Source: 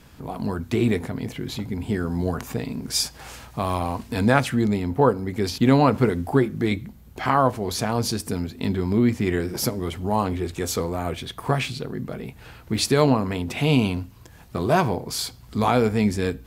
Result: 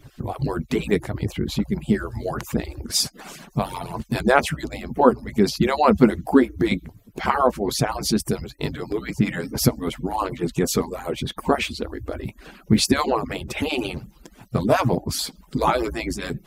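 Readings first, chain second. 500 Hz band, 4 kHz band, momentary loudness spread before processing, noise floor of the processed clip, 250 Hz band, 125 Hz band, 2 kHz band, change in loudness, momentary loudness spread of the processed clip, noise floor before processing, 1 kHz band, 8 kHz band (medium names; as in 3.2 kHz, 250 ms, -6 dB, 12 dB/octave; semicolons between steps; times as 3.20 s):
+1.0 dB, +2.0 dB, 11 LU, -53 dBFS, +0.5 dB, -2.5 dB, +1.5 dB, +0.5 dB, 11 LU, -47 dBFS, +1.0 dB, +2.0 dB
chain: harmonic-percussive separation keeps percussive; peaking EQ 84 Hz +12.5 dB 3 oct; trim +2.5 dB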